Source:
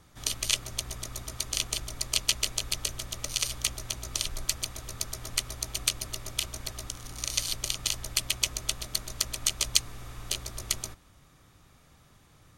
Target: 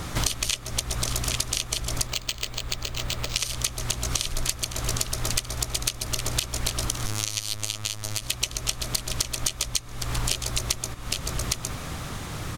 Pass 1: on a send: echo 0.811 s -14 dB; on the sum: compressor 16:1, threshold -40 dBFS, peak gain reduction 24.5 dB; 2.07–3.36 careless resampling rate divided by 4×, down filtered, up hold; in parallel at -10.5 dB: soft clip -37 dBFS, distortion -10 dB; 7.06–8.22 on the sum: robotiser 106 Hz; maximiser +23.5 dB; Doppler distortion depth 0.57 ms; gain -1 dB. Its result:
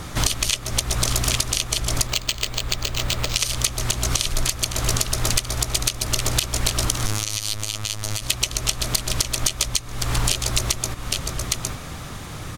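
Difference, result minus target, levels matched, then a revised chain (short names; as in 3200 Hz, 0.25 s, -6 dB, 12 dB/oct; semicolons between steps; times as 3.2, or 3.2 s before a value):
compressor: peak gain reduction -6 dB
on a send: echo 0.811 s -14 dB; on the sum: compressor 16:1, threshold -46.5 dBFS, peak gain reduction 30.5 dB; 2.07–3.36 careless resampling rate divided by 4×, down filtered, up hold; in parallel at -10.5 dB: soft clip -37 dBFS, distortion -15 dB; 7.06–8.22 on the sum: robotiser 106 Hz; maximiser +23.5 dB; Doppler distortion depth 0.57 ms; gain -1 dB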